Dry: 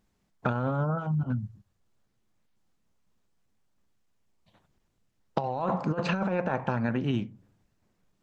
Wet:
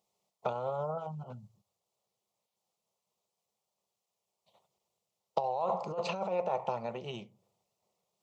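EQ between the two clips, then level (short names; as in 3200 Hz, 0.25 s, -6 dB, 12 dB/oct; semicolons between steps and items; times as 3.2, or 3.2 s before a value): HPF 280 Hz 12 dB/oct; fixed phaser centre 670 Hz, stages 4; 0.0 dB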